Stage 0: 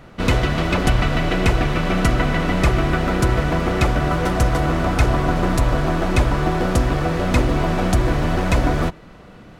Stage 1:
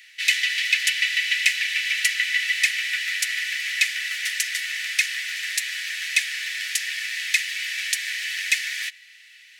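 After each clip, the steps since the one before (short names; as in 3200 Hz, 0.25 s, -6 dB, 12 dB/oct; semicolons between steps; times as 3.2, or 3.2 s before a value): Chebyshev high-pass 1800 Hz, order 6; gain +7.5 dB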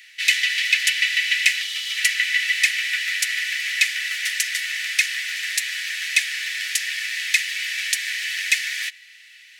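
spectral gain 1.61–1.97, 1400–2800 Hz -10 dB; gain +2 dB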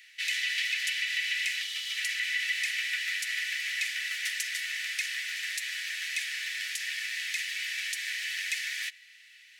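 limiter -12 dBFS, peak gain reduction 9.5 dB; gain -7.5 dB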